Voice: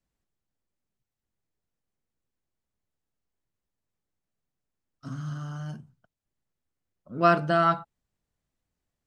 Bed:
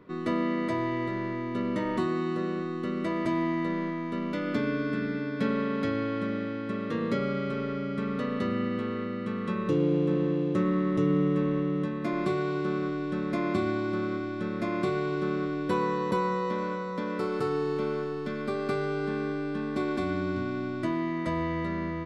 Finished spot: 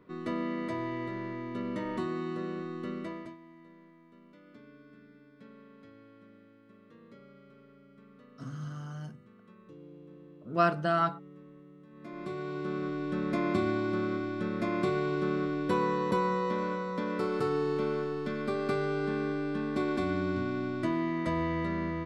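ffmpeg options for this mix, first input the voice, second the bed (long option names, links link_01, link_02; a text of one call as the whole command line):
ffmpeg -i stem1.wav -i stem2.wav -filter_complex "[0:a]adelay=3350,volume=-5dB[link_01];[1:a]volume=19dB,afade=type=out:start_time=2.91:duration=0.46:silence=0.1,afade=type=in:start_time=11.86:duration=1.4:silence=0.0595662[link_02];[link_01][link_02]amix=inputs=2:normalize=0" out.wav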